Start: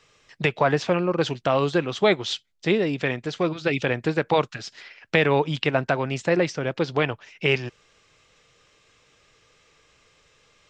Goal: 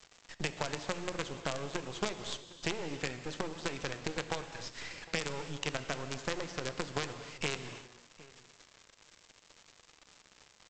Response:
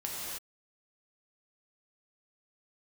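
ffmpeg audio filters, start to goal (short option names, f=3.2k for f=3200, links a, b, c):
-filter_complex "[0:a]bandreject=f=60:t=h:w=6,bandreject=f=120:t=h:w=6,bandreject=f=180:t=h:w=6,bandreject=f=240:t=h:w=6,bandreject=f=300:t=h:w=6,acompressor=threshold=-36dB:ratio=6,aeval=exprs='(tanh(28.2*val(0)+0.1)-tanh(0.1))/28.2':c=same,aresample=16000,acrusher=bits=6:dc=4:mix=0:aa=0.000001,aresample=44100,asplit=2[a][b];[b]adelay=758,volume=-19dB,highshelf=f=4k:g=-17.1[c];[a][c]amix=inputs=2:normalize=0,asplit=2[d][e];[1:a]atrim=start_sample=2205[f];[e][f]afir=irnorm=-1:irlink=0,volume=-10.5dB[g];[d][g]amix=inputs=2:normalize=0,volume=2.5dB"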